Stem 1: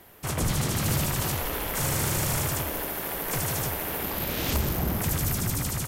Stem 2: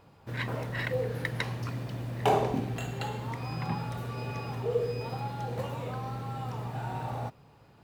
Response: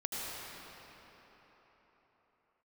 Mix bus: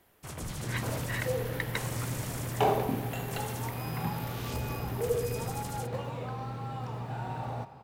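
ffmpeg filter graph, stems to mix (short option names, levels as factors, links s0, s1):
-filter_complex "[0:a]equalizer=f=13000:w=7:g=-11,volume=0.251[s0];[1:a]highshelf=f=8700:g=-6,adelay=350,volume=0.794,asplit=2[s1][s2];[s2]volume=0.158[s3];[2:a]atrim=start_sample=2205[s4];[s3][s4]afir=irnorm=-1:irlink=0[s5];[s0][s1][s5]amix=inputs=3:normalize=0"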